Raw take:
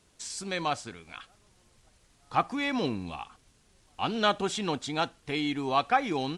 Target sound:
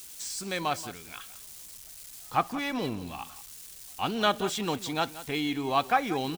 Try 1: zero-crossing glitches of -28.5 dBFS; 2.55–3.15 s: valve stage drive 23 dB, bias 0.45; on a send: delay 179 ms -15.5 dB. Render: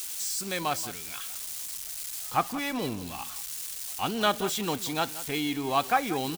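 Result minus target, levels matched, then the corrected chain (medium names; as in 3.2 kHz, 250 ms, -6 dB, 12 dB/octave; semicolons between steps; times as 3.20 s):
zero-crossing glitches: distortion +9 dB
zero-crossing glitches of -38 dBFS; 2.55–3.15 s: valve stage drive 23 dB, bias 0.45; on a send: delay 179 ms -15.5 dB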